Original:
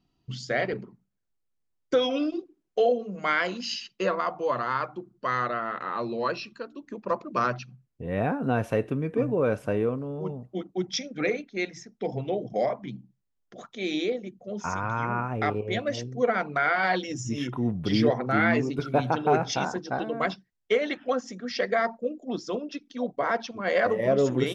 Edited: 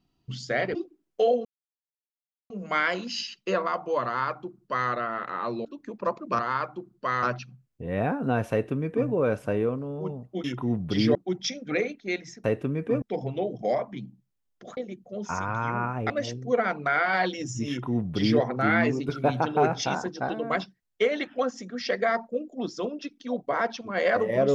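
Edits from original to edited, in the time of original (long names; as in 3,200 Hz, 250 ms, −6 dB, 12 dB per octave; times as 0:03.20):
0:00.75–0:02.33: remove
0:03.03: splice in silence 1.05 s
0:04.59–0:05.43: duplicate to 0:07.43
0:06.18–0:06.69: remove
0:08.71–0:09.29: duplicate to 0:11.93
0:13.68–0:14.12: remove
0:15.45–0:15.80: remove
0:17.39–0:18.10: duplicate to 0:10.64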